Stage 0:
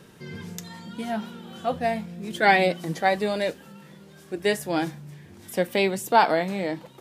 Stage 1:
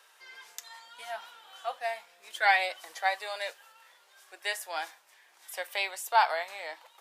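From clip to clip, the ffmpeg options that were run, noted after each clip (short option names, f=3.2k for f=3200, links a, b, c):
-af "highpass=f=750:w=0.5412,highpass=f=750:w=1.3066,volume=-3.5dB"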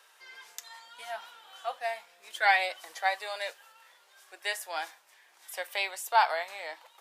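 -af anull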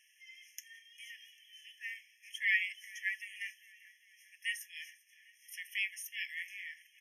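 -af "aecho=1:1:398|796|1194|1592:0.0708|0.0411|0.0238|0.0138,afftfilt=real='re*eq(mod(floor(b*sr/1024/1700),2),1)':imag='im*eq(mod(floor(b*sr/1024/1700),2),1)':win_size=1024:overlap=0.75,volume=-2.5dB"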